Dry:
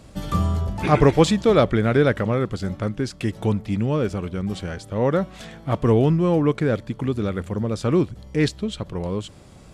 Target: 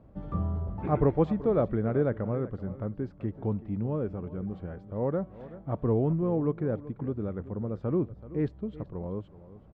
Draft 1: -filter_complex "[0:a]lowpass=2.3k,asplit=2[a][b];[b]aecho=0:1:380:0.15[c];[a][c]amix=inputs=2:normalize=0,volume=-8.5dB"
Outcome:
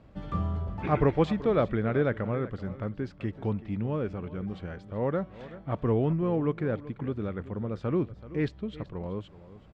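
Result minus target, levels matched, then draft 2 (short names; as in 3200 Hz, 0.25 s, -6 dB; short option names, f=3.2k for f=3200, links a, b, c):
2000 Hz band +8.5 dB
-filter_complex "[0:a]lowpass=960,asplit=2[a][b];[b]aecho=0:1:380:0.15[c];[a][c]amix=inputs=2:normalize=0,volume=-8.5dB"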